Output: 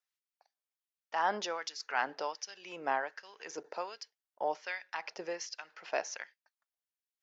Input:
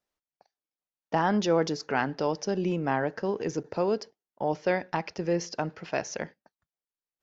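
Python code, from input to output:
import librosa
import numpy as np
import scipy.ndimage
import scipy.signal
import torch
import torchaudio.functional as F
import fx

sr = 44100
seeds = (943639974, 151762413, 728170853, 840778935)

y = fx.filter_lfo_highpass(x, sr, shape='sine', hz=1.3, low_hz=570.0, high_hz=2200.0, q=0.93)
y = y * librosa.db_to_amplitude(-3.5)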